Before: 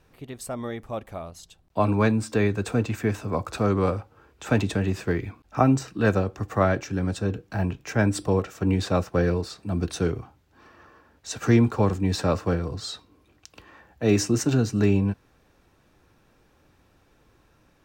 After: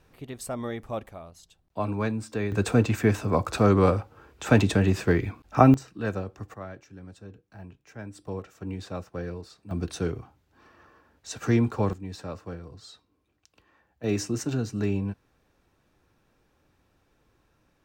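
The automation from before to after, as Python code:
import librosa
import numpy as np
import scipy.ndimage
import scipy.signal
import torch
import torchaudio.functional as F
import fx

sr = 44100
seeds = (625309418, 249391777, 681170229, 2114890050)

y = fx.gain(x, sr, db=fx.steps((0.0, -0.5), (1.09, -7.0), (2.52, 3.0), (5.74, -8.5), (6.54, -18.5), (8.27, -12.0), (9.71, -4.0), (11.93, -13.5), (14.04, -6.5)))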